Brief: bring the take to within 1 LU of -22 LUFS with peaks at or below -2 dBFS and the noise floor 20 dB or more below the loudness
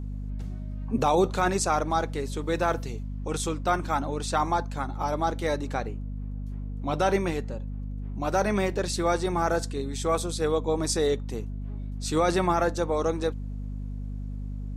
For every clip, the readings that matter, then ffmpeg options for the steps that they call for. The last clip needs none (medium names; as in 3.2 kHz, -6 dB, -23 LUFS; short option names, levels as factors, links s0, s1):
hum 50 Hz; highest harmonic 250 Hz; hum level -31 dBFS; loudness -28.0 LUFS; peak level -11.5 dBFS; loudness target -22.0 LUFS
-> -af "bandreject=f=50:t=h:w=6,bandreject=f=100:t=h:w=6,bandreject=f=150:t=h:w=6,bandreject=f=200:t=h:w=6,bandreject=f=250:t=h:w=6"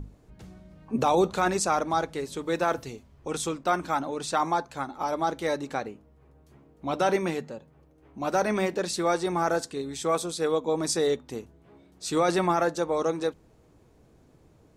hum not found; loudness -27.5 LUFS; peak level -12.0 dBFS; loudness target -22.0 LUFS
-> -af "volume=1.88"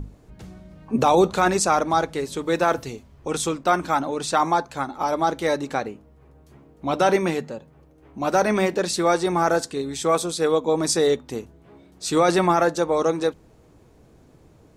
loudness -22.0 LUFS; peak level -6.5 dBFS; noise floor -53 dBFS